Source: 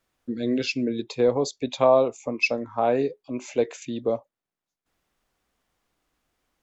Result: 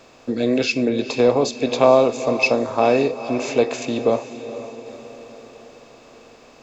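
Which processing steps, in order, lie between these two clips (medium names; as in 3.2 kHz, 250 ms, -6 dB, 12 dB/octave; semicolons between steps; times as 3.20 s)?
spectral levelling over time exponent 0.6; echo that smears into a reverb 470 ms, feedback 53%, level -12.5 dB; trim +3 dB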